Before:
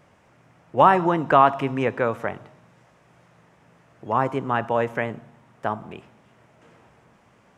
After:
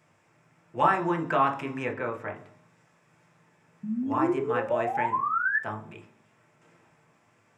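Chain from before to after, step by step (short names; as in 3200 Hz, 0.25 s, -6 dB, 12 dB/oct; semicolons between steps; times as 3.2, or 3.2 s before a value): 1.93–2.36 high shelf 4400 Hz -11.5 dB; 3.83–5.59 painted sound rise 200–1800 Hz -21 dBFS; reverb RT60 0.40 s, pre-delay 3 ms, DRR 3 dB; gain -6 dB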